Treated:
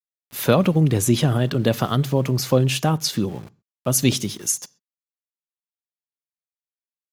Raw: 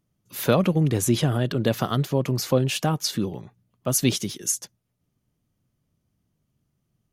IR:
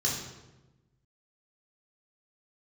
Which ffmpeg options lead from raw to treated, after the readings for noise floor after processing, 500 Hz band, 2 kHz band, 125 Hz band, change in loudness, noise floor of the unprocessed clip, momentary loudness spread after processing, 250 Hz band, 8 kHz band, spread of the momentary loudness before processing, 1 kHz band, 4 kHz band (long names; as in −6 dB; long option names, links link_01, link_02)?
below −85 dBFS, +2.5 dB, +3.0 dB, +4.0 dB, +3.0 dB, −76 dBFS, 8 LU, +3.0 dB, +2.5 dB, 8 LU, +3.0 dB, +3.0 dB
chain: -filter_complex "[0:a]aeval=exprs='val(0)*gte(abs(val(0)),0.00668)':channel_layout=same,asplit=2[link_01][link_02];[1:a]atrim=start_sample=2205,atrim=end_sample=6174[link_03];[link_02][link_03]afir=irnorm=-1:irlink=0,volume=-28dB[link_04];[link_01][link_04]amix=inputs=2:normalize=0,volume=3dB"